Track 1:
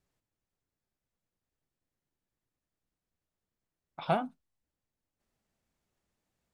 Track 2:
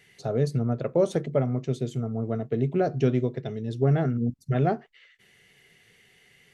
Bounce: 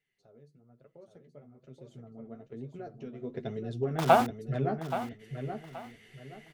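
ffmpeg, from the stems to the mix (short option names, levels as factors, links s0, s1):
-filter_complex "[0:a]equalizer=f=890:t=o:w=2.9:g=5,aeval=exprs='val(0)*gte(abs(val(0)),0.0158)':c=same,volume=0.794,asplit=2[s0][s1];[s1]volume=0.237[s2];[1:a]bass=f=250:g=9,treble=f=4000:g=-4,acompressor=threshold=0.0398:ratio=2,flanger=delay=6.1:depth=8:regen=29:speed=1.1:shape=triangular,volume=0.75,afade=t=in:st=1.58:d=0.37:silence=0.421697,afade=t=in:st=3.17:d=0.21:silence=0.237137,asplit=2[s3][s4];[s4]volume=0.473[s5];[s2][s5]amix=inputs=2:normalize=0,aecho=0:1:826|1652|2478|3304:1|0.29|0.0841|0.0244[s6];[s0][s3][s6]amix=inputs=3:normalize=0,equalizer=f=110:w=0.85:g=-12.5,dynaudnorm=f=540:g=5:m=2.11"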